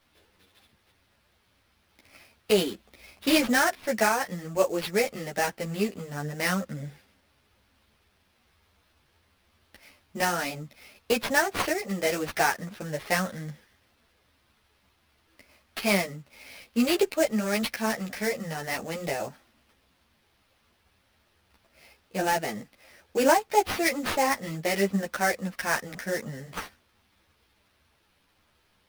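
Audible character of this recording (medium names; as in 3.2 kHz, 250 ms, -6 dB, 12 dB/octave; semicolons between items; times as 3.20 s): aliases and images of a low sample rate 7.4 kHz, jitter 20%; a shimmering, thickened sound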